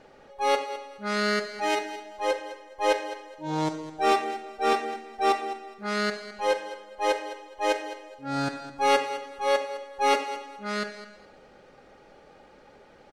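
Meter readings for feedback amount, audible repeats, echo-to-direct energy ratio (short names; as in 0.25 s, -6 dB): 23%, 2, -13.5 dB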